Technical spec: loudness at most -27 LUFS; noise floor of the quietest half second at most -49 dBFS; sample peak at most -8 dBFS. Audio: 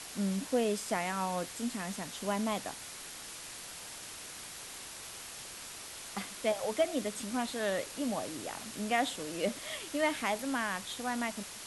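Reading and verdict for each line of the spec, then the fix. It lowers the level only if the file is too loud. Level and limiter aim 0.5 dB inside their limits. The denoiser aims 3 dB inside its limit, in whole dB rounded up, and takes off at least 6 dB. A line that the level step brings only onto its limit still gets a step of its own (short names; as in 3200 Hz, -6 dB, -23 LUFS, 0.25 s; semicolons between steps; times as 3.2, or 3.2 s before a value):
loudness -35.5 LUFS: OK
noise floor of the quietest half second -46 dBFS: fail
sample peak -17.0 dBFS: OK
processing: denoiser 6 dB, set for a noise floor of -46 dBFS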